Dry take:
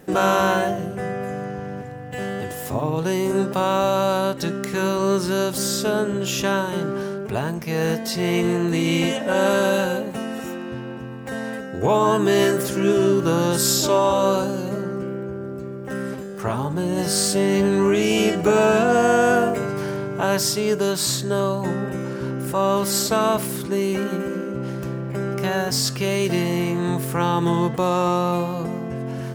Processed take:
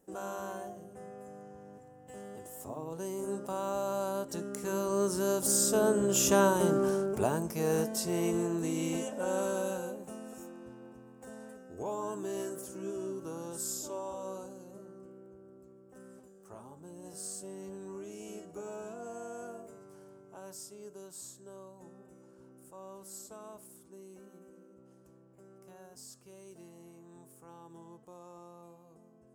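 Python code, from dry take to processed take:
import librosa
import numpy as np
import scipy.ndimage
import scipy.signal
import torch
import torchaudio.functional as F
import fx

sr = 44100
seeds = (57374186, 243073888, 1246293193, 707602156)

y = fx.doppler_pass(x, sr, speed_mps=7, closest_m=4.9, pass_at_s=6.63)
y = fx.graphic_eq(y, sr, hz=(125, 2000, 4000, 8000), db=(-9, -10, -9, 8))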